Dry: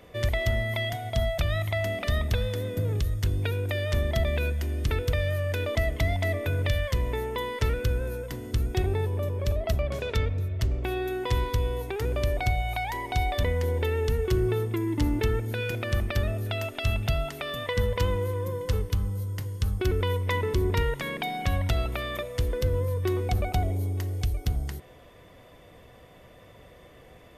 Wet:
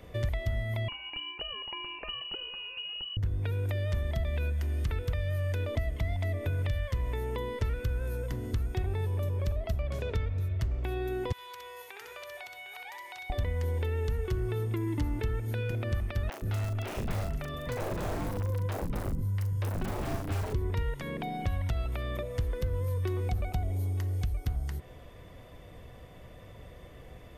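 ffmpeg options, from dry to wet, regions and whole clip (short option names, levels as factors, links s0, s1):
-filter_complex "[0:a]asettb=1/sr,asplit=3[s0][s1][s2];[s0]atrim=end=0.884[s3];[s1]atrim=start=0.88:end=3.17,asetpts=PTS-STARTPTS,afade=t=in:d=0.004:c=qsin,afade=t=out:st=2.286:d=0.004:c=qsin,lowshelf=f=400:g=9,lowpass=f=2600:t=q:w=0.5098,lowpass=f=2600:t=q:w=0.6013,lowpass=f=2600:t=q:w=0.9,lowpass=f=2600:t=q:w=2.563,afreqshift=-3000[s4];[s2]atrim=start=3.166[s5];[s3][s4]acrossfade=d=0.004:c1=hsin:c2=qsin[s6];[s6][s5]acrossfade=d=0.004:c1=qsin:c2=hsin,asettb=1/sr,asplit=3[s7][s8][s9];[s7]atrim=end=11.324[s10];[s8]atrim=start=11.32:end=13.3,asetpts=PTS-STARTPTS,afade=t=in:d=0.004:c=qsin,afade=t=out:st=1.976:d=0.004:c=qsin,highpass=1400,acompressor=threshold=0.0112:ratio=2:attack=3.2:release=140:knee=1:detection=peak,aecho=1:1:63|755:0.668|0.335,atrim=end_sample=87318[s11];[s9]atrim=start=13.296[s12];[s10][s11]acrossfade=d=0.004:c1=hsin:c2=qsin[s13];[s13][s12]acrossfade=d=0.004:c1=qsin:c2=hsin,asettb=1/sr,asplit=3[s14][s15][s16];[s14]atrim=end=16.294[s17];[s15]atrim=start=16.29:end=20.53,asetpts=PTS-STARTPTS,afade=t=in:d=0.004:c=qsin,afade=t=out:st=4.236:d=0.004:c=qsin,aeval=exprs='(mod(14.1*val(0)+1,2)-1)/14.1':c=same,asplit=2[s18][s19];[s19]adelay=40,volume=0.531[s20];[s18][s20]amix=inputs=2:normalize=0,atrim=end_sample=186984,acrossover=split=300|3900[s21][s22][s23];[s23]adelay=30[s24];[s21]adelay=130[s25];[s25][s22][s24]amix=inputs=3:normalize=0,atrim=end_sample=186984[s26];[s16]atrim=start=20.526[s27];[s17][s26]acrossfade=d=0.004:c1=hsin:c2=qsin[s28];[s28][s27]acrossfade=d=0.004:c1=qsin:c2=hsin,lowshelf=f=140:g=10,acrossover=split=700|2100[s29][s30][s31];[s29]acompressor=threshold=0.0398:ratio=4[s32];[s30]acompressor=threshold=0.00631:ratio=4[s33];[s31]acompressor=threshold=0.00355:ratio=4[s34];[s32][s33][s34]amix=inputs=3:normalize=0,volume=0.841"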